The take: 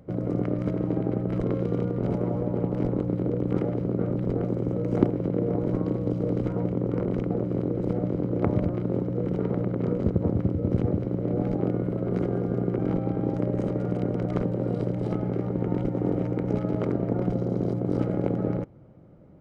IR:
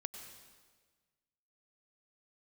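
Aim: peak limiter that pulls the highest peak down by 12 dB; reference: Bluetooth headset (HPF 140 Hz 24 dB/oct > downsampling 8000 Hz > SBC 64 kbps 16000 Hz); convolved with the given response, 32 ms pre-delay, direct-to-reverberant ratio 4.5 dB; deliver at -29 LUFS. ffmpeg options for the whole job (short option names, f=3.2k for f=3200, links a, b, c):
-filter_complex "[0:a]alimiter=limit=-16.5dB:level=0:latency=1,asplit=2[a][b];[1:a]atrim=start_sample=2205,adelay=32[c];[b][c]afir=irnorm=-1:irlink=0,volume=-2.5dB[d];[a][d]amix=inputs=2:normalize=0,highpass=f=140:w=0.5412,highpass=f=140:w=1.3066,aresample=8000,aresample=44100,volume=-1dB" -ar 16000 -c:a sbc -b:a 64k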